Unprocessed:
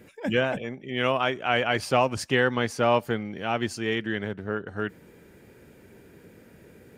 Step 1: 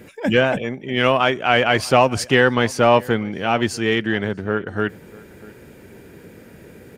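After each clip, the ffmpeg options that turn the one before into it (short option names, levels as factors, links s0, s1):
-filter_complex "[0:a]asplit=2[s0][s1];[s1]asoftclip=type=tanh:threshold=0.0891,volume=0.251[s2];[s0][s2]amix=inputs=2:normalize=0,asplit=2[s3][s4];[s4]adelay=641.4,volume=0.0794,highshelf=f=4000:g=-14.4[s5];[s3][s5]amix=inputs=2:normalize=0,volume=2.11"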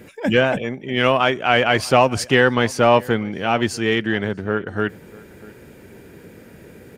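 -af anull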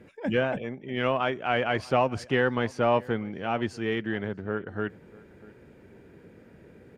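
-af "aemphasis=mode=reproduction:type=75kf,volume=0.376"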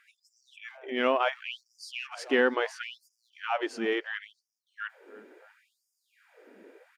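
-filter_complex "[0:a]asplit=2[s0][s1];[s1]adelay=320,highpass=300,lowpass=3400,asoftclip=type=hard:threshold=0.112,volume=0.0708[s2];[s0][s2]amix=inputs=2:normalize=0,afftfilt=real='re*gte(b*sr/1024,210*pow(4900/210,0.5+0.5*sin(2*PI*0.72*pts/sr)))':imag='im*gte(b*sr/1024,210*pow(4900/210,0.5+0.5*sin(2*PI*0.72*pts/sr)))':win_size=1024:overlap=0.75,volume=1.12"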